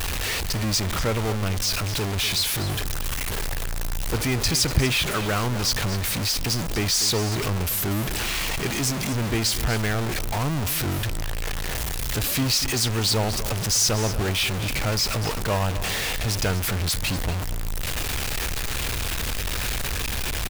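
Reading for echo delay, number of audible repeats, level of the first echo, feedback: 243 ms, 1, -13.0 dB, no regular repeats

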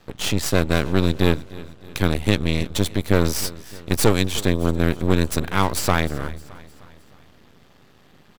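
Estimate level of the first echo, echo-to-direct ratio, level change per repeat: -19.0 dB, -18.0 dB, -6.0 dB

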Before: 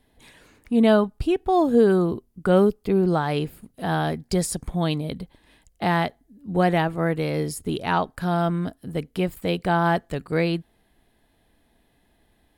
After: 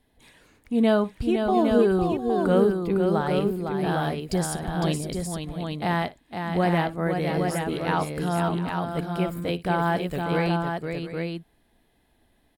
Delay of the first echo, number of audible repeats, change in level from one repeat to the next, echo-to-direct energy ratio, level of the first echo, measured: 58 ms, 4, no regular repeats, -2.0 dB, -18.5 dB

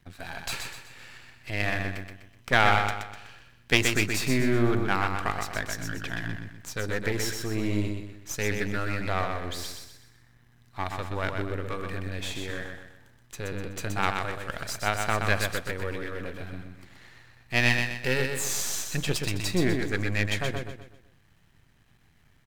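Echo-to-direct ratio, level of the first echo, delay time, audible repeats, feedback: -4.5 dB, -5.0 dB, 125 ms, 4, 40%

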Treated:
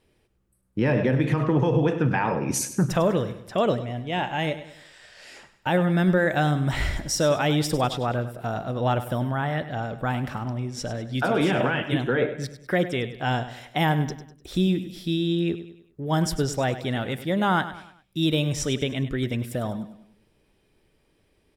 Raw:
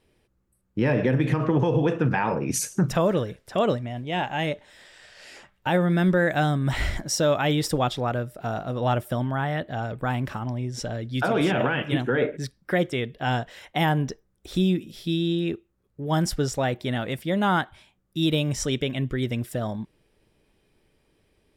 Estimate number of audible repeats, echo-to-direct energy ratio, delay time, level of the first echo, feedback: 4, -12.0 dB, 100 ms, -13.0 dB, 43%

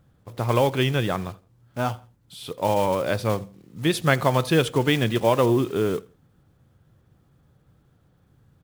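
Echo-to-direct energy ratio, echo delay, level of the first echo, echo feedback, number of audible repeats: -22.5 dB, 83 ms, -23.0 dB, 29%, 2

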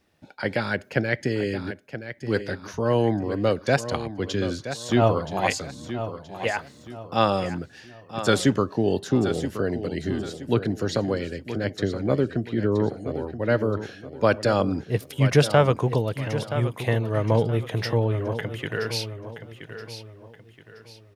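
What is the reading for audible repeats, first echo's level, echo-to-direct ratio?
3, -11.0 dB, -10.5 dB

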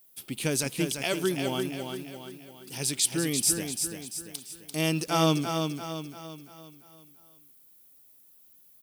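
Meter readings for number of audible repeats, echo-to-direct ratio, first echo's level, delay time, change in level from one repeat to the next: 5, -5.0 dB, -6.0 dB, 342 ms, -6.5 dB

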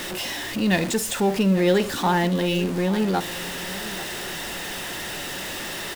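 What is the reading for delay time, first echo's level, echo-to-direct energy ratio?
842 ms, -16.0 dB, -15.5 dB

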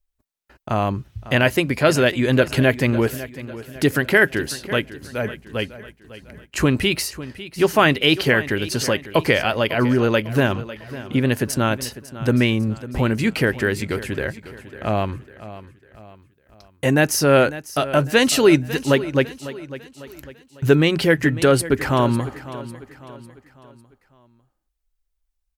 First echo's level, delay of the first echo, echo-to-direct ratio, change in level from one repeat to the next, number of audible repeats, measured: -15.5 dB, 550 ms, -14.5 dB, -7.5 dB, 3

